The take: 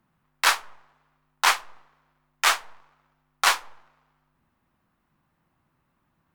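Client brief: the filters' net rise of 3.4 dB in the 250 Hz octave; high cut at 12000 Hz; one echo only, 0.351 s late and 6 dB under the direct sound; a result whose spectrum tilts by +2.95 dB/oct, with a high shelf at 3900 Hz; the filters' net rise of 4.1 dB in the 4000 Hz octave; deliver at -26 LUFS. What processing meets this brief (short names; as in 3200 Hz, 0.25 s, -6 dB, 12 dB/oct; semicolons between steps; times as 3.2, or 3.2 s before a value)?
LPF 12000 Hz; bell 250 Hz +5 dB; high shelf 3900 Hz -4 dB; bell 4000 Hz +7.5 dB; echo 0.351 s -6 dB; gain -3 dB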